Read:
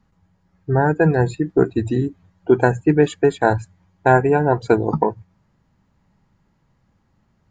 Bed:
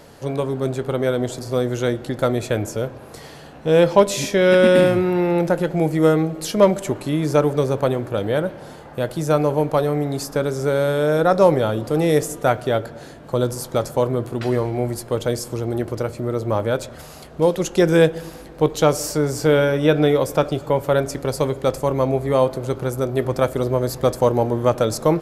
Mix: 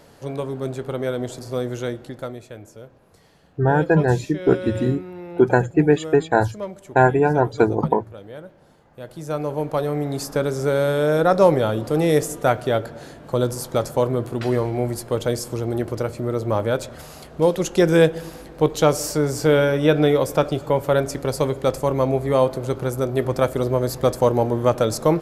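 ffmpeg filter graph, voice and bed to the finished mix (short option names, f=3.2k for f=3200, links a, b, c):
-filter_complex "[0:a]adelay=2900,volume=-1dB[a];[1:a]volume=12dB,afade=t=out:st=1.72:d=0.73:silence=0.237137,afade=t=in:st=8.9:d=1.44:silence=0.149624[b];[a][b]amix=inputs=2:normalize=0"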